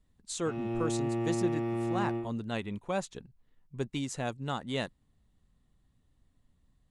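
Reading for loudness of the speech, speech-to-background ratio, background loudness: -36.5 LUFS, -3.0 dB, -33.5 LUFS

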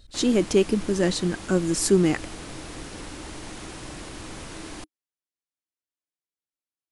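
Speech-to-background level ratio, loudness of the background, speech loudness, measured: 15.5 dB, -38.5 LUFS, -23.0 LUFS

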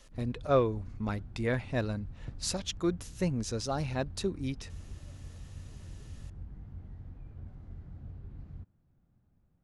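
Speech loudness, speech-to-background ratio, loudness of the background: -33.5 LUFS, 14.5 dB, -48.0 LUFS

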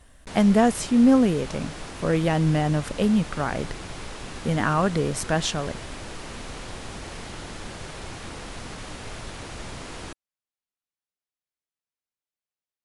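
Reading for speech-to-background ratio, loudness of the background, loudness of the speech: 14.5 dB, -37.5 LUFS, -23.0 LUFS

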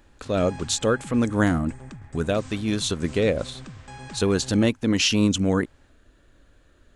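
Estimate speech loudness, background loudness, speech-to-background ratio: -23.5 LUFS, -42.0 LUFS, 18.5 dB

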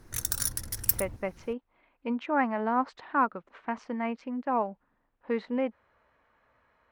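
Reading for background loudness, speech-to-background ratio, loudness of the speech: -29.0 LUFS, -2.5 dB, -31.5 LUFS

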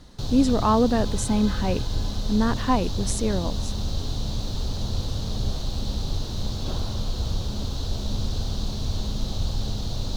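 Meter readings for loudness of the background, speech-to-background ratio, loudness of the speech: -30.0 LUFS, 5.5 dB, -24.5 LUFS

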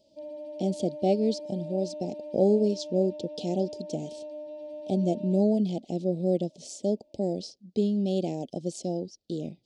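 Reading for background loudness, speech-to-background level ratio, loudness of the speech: -40.5 LUFS, 11.5 dB, -29.0 LUFS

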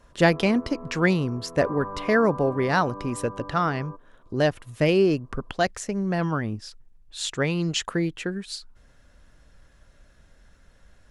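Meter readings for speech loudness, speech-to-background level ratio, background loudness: -25.0 LUFS, 13.5 dB, -38.5 LUFS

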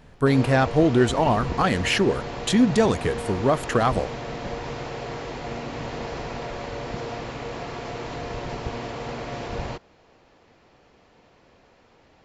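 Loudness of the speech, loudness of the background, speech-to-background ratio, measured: -21.5 LUFS, -32.5 LUFS, 11.0 dB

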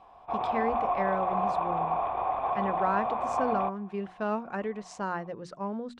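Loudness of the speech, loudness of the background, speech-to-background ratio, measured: -34.5 LUFS, -30.0 LUFS, -4.5 dB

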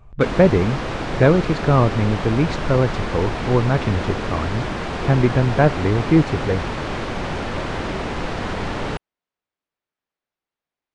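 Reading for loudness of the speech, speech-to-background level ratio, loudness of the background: -19.5 LUFS, 7.0 dB, -26.5 LUFS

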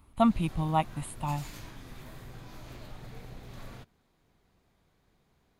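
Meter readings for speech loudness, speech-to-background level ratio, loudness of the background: -30.0 LUFS, 17.5 dB, -47.5 LUFS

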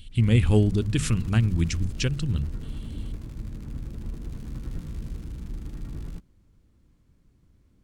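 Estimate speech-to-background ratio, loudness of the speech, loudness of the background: 14.0 dB, -24.0 LUFS, -38.0 LUFS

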